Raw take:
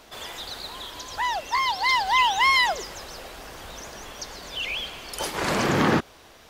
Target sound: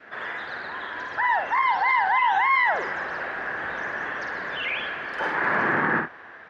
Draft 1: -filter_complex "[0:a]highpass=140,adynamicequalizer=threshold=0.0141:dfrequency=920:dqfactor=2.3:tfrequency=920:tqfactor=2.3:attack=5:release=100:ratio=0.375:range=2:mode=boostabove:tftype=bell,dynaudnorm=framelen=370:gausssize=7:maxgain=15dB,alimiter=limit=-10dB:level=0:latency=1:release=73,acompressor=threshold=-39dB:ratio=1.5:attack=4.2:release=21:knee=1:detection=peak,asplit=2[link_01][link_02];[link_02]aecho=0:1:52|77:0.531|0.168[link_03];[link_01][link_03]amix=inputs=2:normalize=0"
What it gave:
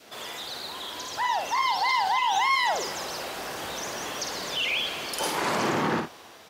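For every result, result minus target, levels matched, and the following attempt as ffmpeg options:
2,000 Hz band −4.5 dB; downward compressor: peak gain reduction +3 dB
-filter_complex "[0:a]highpass=140,adynamicequalizer=threshold=0.0141:dfrequency=920:dqfactor=2.3:tfrequency=920:tqfactor=2.3:attack=5:release=100:ratio=0.375:range=2:mode=boostabove:tftype=bell,lowpass=frequency=1700:width_type=q:width=5.8,dynaudnorm=framelen=370:gausssize=7:maxgain=15dB,alimiter=limit=-10dB:level=0:latency=1:release=73,acompressor=threshold=-39dB:ratio=1.5:attack=4.2:release=21:knee=1:detection=peak,asplit=2[link_01][link_02];[link_02]aecho=0:1:52|77:0.531|0.168[link_03];[link_01][link_03]amix=inputs=2:normalize=0"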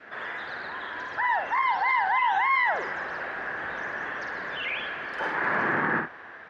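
downward compressor: peak gain reduction +3 dB
-filter_complex "[0:a]highpass=140,adynamicequalizer=threshold=0.0141:dfrequency=920:dqfactor=2.3:tfrequency=920:tqfactor=2.3:attack=5:release=100:ratio=0.375:range=2:mode=boostabove:tftype=bell,lowpass=frequency=1700:width_type=q:width=5.8,dynaudnorm=framelen=370:gausssize=7:maxgain=15dB,alimiter=limit=-10dB:level=0:latency=1:release=73,acompressor=threshold=-30.5dB:ratio=1.5:attack=4.2:release=21:knee=1:detection=peak,asplit=2[link_01][link_02];[link_02]aecho=0:1:52|77:0.531|0.168[link_03];[link_01][link_03]amix=inputs=2:normalize=0"

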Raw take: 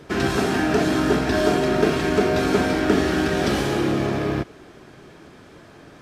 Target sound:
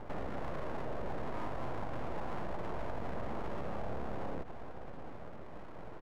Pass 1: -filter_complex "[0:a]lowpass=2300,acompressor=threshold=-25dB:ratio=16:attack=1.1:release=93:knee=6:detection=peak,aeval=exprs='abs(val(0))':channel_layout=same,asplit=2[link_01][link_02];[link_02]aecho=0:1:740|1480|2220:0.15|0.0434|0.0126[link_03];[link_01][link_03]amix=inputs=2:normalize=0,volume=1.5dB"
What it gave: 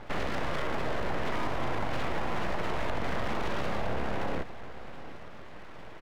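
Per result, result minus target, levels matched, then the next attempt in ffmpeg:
downward compressor: peak gain reduction −7.5 dB; 2,000 Hz band +4.0 dB
-filter_complex "[0:a]lowpass=2300,acompressor=threshold=-33dB:ratio=16:attack=1.1:release=93:knee=6:detection=peak,aeval=exprs='abs(val(0))':channel_layout=same,asplit=2[link_01][link_02];[link_02]aecho=0:1:740|1480|2220:0.15|0.0434|0.0126[link_03];[link_01][link_03]amix=inputs=2:normalize=0,volume=1.5dB"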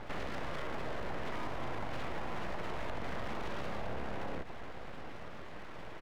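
2,000 Hz band +5.5 dB
-filter_complex "[0:a]lowpass=800,acompressor=threshold=-33dB:ratio=16:attack=1.1:release=93:knee=6:detection=peak,aeval=exprs='abs(val(0))':channel_layout=same,asplit=2[link_01][link_02];[link_02]aecho=0:1:740|1480|2220:0.15|0.0434|0.0126[link_03];[link_01][link_03]amix=inputs=2:normalize=0,volume=1.5dB"

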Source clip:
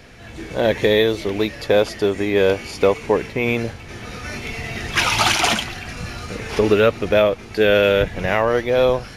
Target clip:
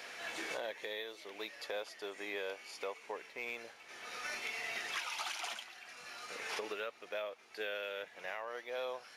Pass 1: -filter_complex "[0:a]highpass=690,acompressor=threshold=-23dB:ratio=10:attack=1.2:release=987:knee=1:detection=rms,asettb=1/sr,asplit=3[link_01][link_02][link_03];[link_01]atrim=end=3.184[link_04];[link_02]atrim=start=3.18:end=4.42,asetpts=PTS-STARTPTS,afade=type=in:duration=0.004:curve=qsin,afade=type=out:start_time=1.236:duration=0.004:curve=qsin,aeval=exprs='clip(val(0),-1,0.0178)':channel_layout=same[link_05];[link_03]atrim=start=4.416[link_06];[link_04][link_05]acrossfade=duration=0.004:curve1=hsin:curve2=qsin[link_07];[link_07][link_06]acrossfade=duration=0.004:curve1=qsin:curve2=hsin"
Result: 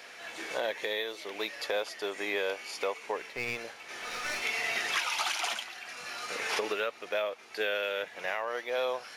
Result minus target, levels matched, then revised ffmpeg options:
downward compressor: peak gain reduction −9 dB
-filter_complex "[0:a]highpass=690,acompressor=threshold=-33dB:ratio=10:attack=1.2:release=987:knee=1:detection=rms,asettb=1/sr,asplit=3[link_01][link_02][link_03];[link_01]atrim=end=3.184[link_04];[link_02]atrim=start=3.18:end=4.42,asetpts=PTS-STARTPTS,afade=type=in:duration=0.004:curve=qsin,afade=type=out:start_time=1.236:duration=0.004:curve=qsin,aeval=exprs='clip(val(0),-1,0.0178)':channel_layout=same[link_05];[link_03]atrim=start=4.416[link_06];[link_04][link_05]acrossfade=duration=0.004:curve1=hsin:curve2=qsin[link_07];[link_07][link_06]acrossfade=duration=0.004:curve1=qsin:curve2=hsin"

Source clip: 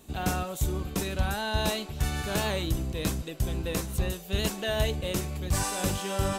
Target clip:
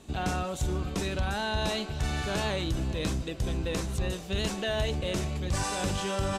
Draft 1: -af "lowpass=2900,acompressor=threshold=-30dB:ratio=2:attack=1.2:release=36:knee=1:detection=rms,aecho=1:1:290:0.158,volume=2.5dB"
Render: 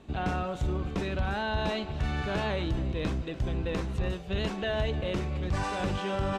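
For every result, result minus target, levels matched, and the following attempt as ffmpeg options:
8,000 Hz band −13.0 dB; echo 148 ms early
-af "lowpass=7300,acompressor=threshold=-30dB:ratio=2:attack=1.2:release=36:knee=1:detection=rms,aecho=1:1:290:0.158,volume=2.5dB"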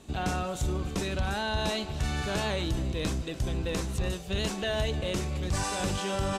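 echo 148 ms early
-af "lowpass=7300,acompressor=threshold=-30dB:ratio=2:attack=1.2:release=36:knee=1:detection=rms,aecho=1:1:438:0.158,volume=2.5dB"

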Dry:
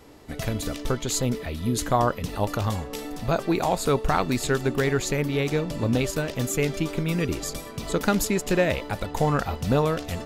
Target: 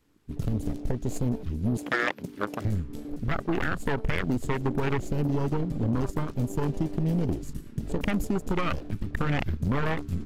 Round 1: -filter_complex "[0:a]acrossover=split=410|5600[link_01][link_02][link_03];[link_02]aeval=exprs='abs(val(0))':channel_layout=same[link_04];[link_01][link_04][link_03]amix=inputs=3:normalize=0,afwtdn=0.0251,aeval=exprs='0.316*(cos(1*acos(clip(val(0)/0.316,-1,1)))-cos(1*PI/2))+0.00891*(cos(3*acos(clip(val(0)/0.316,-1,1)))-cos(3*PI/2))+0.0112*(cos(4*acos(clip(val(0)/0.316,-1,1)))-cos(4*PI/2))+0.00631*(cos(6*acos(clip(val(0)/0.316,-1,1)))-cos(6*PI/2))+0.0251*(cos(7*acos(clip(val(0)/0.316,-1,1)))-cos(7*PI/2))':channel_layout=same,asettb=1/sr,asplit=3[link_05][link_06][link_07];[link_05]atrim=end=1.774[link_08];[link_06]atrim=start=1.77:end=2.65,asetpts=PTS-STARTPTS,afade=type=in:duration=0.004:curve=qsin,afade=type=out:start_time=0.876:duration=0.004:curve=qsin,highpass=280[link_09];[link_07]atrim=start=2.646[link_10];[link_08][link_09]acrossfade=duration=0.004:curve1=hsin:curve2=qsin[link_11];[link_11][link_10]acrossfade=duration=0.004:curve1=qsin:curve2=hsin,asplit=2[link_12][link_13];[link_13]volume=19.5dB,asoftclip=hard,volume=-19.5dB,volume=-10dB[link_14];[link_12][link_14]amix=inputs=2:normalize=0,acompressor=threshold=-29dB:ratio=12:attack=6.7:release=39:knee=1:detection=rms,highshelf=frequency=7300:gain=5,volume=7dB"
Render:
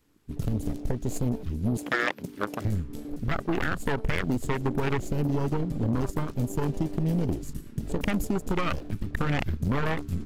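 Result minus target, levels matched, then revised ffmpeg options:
gain into a clipping stage and back: distortion −8 dB; 8,000 Hz band +2.5 dB
-filter_complex "[0:a]acrossover=split=410|5600[link_01][link_02][link_03];[link_02]aeval=exprs='abs(val(0))':channel_layout=same[link_04];[link_01][link_04][link_03]amix=inputs=3:normalize=0,afwtdn=0.0251,aeval=exprs='0.316*(cos(1*acos(clip(val(0)/0.316,-1,1)))-cos(1*PI/2))+0.00891*(cos(3*acos(clip(val(0)/0.316,-1,1)))-cos(3*PI/2))+0.0112*(cos(4*acos(clip(val(0)/0.316,-1,1)))-cos(4*PI/2))+0.00631*(cos(6*acos(clip(val(0)/0.316,-1,1)))-cos(6*PI/2))+0.0251*(cos(7*acos(clip(val(0)/0.316,-1,1)))-cos(7*PI/2))':channel_layout=same,asettb=1/sr,asplit=3[link_05][link_06][link_07];[link_05]atrim=end=1.774[link_08];[link_06]atrim=start=1.77:end=2.65,asetpts=PTS-STARTPTS,afade=type=in:duration=0.004:curve=qsin,afade=type=out:start_time=0.876:duration=0.004:curve=qsin,highpass=280[link_09];[link_07]atrim=start=2.646[link_10];[link_08][link_09]acrossfade=duration=0.004:curve1=hsin:curve2=qsin[link_11];[link_11][link_10]acrossfade=duration=0.004:curve1=qsin:curve2=hsin,asplit=2[link_12][link_13];[link_13]volume=26.5dB,asoftclip=hard,volume=-26.5dB,volume=-10dB[link_14];[link_12][link_14]amix=inputs=2:normalize=0,acompressor=threshold=-29dB:ratio=12:attack=6.7:release=39:knee=1:detection=rms,volume=7dB"

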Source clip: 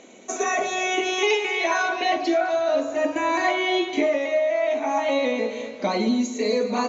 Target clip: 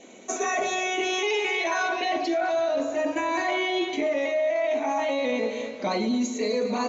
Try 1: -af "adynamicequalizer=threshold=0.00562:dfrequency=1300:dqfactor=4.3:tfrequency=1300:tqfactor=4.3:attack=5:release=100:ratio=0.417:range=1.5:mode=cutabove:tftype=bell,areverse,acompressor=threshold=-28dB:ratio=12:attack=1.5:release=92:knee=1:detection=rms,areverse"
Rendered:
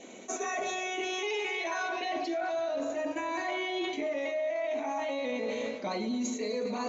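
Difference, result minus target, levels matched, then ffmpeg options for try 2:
downward compressor: peak gain reduction +7.5 dB
-af "adynamicequalizer=threshold=0.00562:dfrequency=1300:dqfactor=4.3:tfrequency=1300:tqfactor=4.3:attack=5:release=100:ratio=0.417:range=1.5:mode=cutabove:tftype=bell,areverse,acompressor=threshold=-20dB:ratio=12:attack=1.5:release=92:knee=1:detection=rms,areverse"

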